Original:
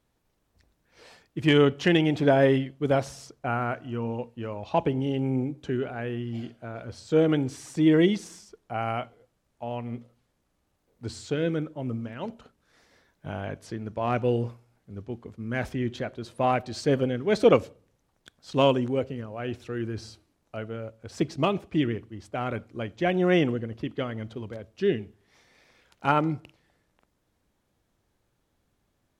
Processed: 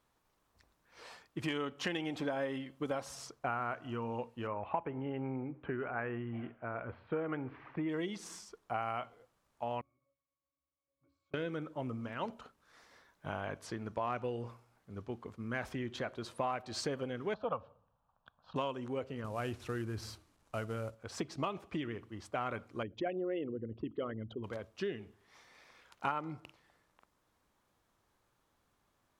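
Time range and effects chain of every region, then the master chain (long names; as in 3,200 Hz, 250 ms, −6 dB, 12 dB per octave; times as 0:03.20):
0:01.43–0:03.15: high-shelf EQ 8,600 Hz +6.5 dB + comb filter 3.8 ms, depth 31%
0:04.47–0:07.89: Butterworth low-pass 2,500 Hz + dynamic equaliser 1,300 Hz, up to +4 dB, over −39 dBFS, Q 0.96
0:09.81–0:11.34: low-shelf EQ 270 Hz −10.5 dB + downward compressor 5 to 1, threshold −44 dBFS + resonances in every octave C#, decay 0.35 s
0:17.34–0:18.56: low-pass filter 2,800 Hz 24 dB per octave + phaser with its sweep stopped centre 860 Hz, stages 4
0:19.24–0:20.95: variable-slope delta modulation 64 kbit/s + low-shelf EQ 160 Hz +10.5 dB
0:22.83–0:24.44: spectral envelope exaggerated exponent 2 + parametric band 2,800 Hz +6 dB 0.44 octaves
whole clip: parametric band 1,100 Hz +7 dB 0.78 octaves; downward compressor 10 to 1, threshold −29 dBFS; low-shelf EQ 390 Hz −6 dB; level −1.5 dB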